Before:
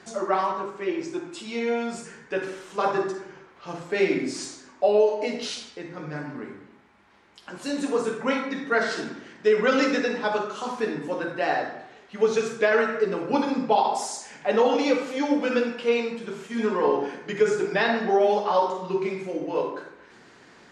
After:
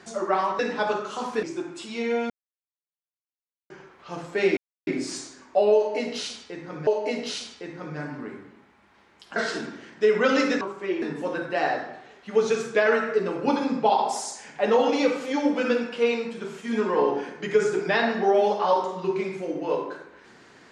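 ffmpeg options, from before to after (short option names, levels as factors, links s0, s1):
-filter_complex "[0:a]asplit=10[s0][s1][s2][s3][s4][s5][s6][s7][s8][s9];[s0]atrim=end=0.592[s10];[s1]atrim=start=10.038:end=10.882[s11];[s2]atrim=start=0.998:end=1.87,asetpts=PTS-STARTPTS,afade=t=out:st=0.868:d=0.004:c=hsin[s12];[s3]atrim=start=1.87:end=3.27,asetpts=PTS-STARTPTS,volume=0[s13];[s4]atrim=start=3.27:end=4.14,asetpts=PTS-STARTPTS,afade=t=in:d=0.004:c=hsin,afade=t=out:st=0.866:d=0.004:c=hsin,apad=pad_dur=0.3[s14];[s5]atrim=start=4.14:end=6.142,asetpts=PTS-STARTPTS,afade=t=in:d=0.004:c=hsin[s15];[s6]atrim=start=5.028:end=7.522[s16];[s7]atrim=start=8.788:end=10.042[s17];[s8]atrim=start=0.588:end=1.002[s18];[s9]atrim=start=10.878[s19];[s10][s11]acrossfade=d=0.004:c1=hsin:c2=hsin[s20];[s12][s13][s14][s15]concat=n=4:v=0:a=1[s21];[s20][s21]acrossfade=d=0.004:c1=hsin:c2=hsin[s22];[s22][s16]acrossfade=d=0.004:c1=hsin:c2=hsin[s23];[s23][s17]acrossfade=d=0.004:c1=hsin:c2=hsin[s24];[s24][s18]acrossfade=d=0.004:c1=hsin:c2=hsin[s25];[s25][s19]acrossfade=d=0.004:c1=hsin:c2=hsin"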